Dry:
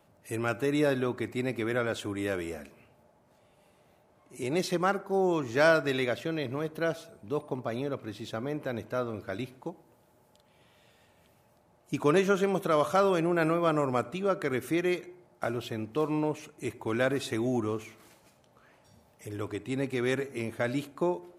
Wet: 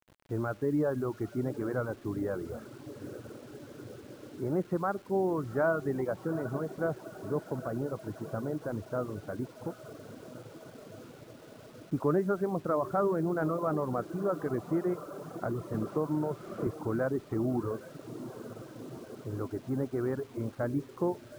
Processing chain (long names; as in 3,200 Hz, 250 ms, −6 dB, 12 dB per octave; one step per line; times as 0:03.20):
Butterworth low-pass 1,500 Hz 36 dB per octave
low-shelf EQ 260 Hz +7.5 dB
feedback delay with all-pass diffusion 800 ms, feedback 75%, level −13 dB
in parallel at −0.5 dB: brickwall limiter −18.5 dBFS, peak gain reduction 7.5 dB
on the sum: reverb reduction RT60 1 s
bit reduction 8 bits
0:15.74–0:16.67: multiband upward and downward compressor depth 70%
level −8.5 dB